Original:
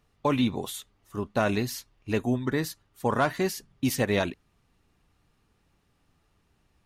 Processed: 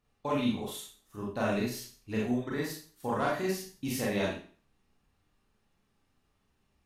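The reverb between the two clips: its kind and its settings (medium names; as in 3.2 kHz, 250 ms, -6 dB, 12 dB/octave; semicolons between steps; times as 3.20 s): Schroeder reverb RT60 0.42 s, combs from 29 ms, DRR -4.5 dB; trim -10.5 dB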